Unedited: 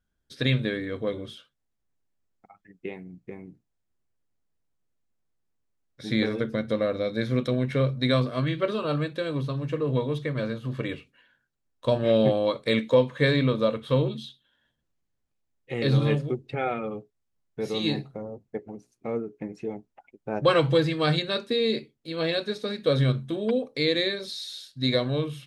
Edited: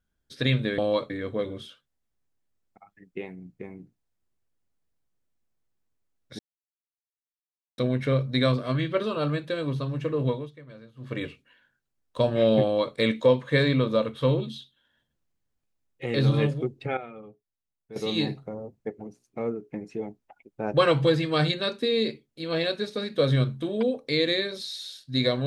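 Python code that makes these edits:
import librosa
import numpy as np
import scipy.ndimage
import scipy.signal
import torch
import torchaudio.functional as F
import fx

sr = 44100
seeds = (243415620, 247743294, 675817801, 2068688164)

y = fx.edit(x, sr, fx.silence(start_s=6.07, length_s=1.39),
    fx.fade_down_up(start_s=9.96, length_s=0.91, db=-17.5, fade_s=0.22),
    fx.duplicate(start_s=12.31, length_s=0.32, to_s=0.78),
    fx.clip_gain(start_s=16.65, length_s=0.99, db=-11.5), tone=tone)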